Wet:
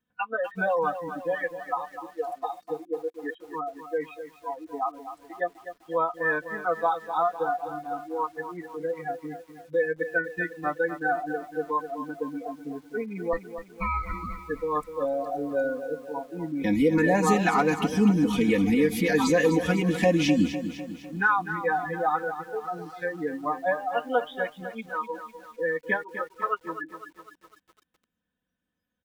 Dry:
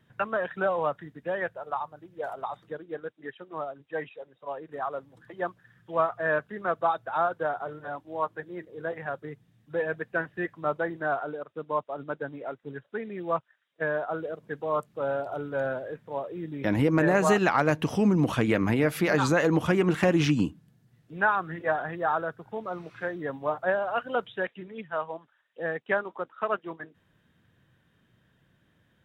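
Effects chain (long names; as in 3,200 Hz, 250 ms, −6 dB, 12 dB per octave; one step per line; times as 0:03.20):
0:13.33–0:14.36: ring modulation 670 Hz
notch filter 2,000 Hz, Q 16
comb filter 4 ms, depth 97%
in parallel at +2.5 dB: downward compressor 8 to 1, threshold −33 dBFS, peak gain reduction 18 dB
on the sum: noise reduction from a noise print of the clip's start 24 dB
feedback echo at a low word length 251 ms, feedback 55%, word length 8 bits, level −10.5 dB
level −3 dB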